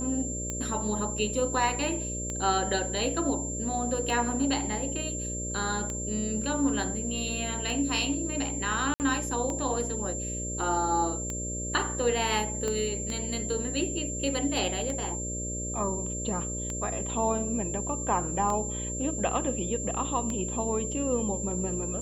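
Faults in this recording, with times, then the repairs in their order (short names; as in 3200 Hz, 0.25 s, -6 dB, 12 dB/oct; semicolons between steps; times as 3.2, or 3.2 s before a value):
buzz 60 Hz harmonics 10 -36 dBFS
tick 33 1/3 rpm -19 dBFS
tone 7300 Hz -34 dBFS
8.94–9 gap 59 ms
12.68 pop -18 dBFS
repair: de-click; de-hum 60 Hz, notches 10; notch 7300 Hz, Q 30; interpolate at 8.94, 59 ms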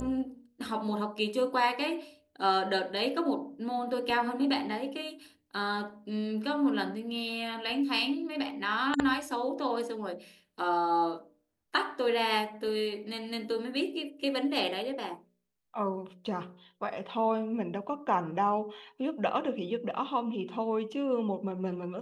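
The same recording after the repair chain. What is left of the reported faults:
tone 7300 Hz
12.68 pop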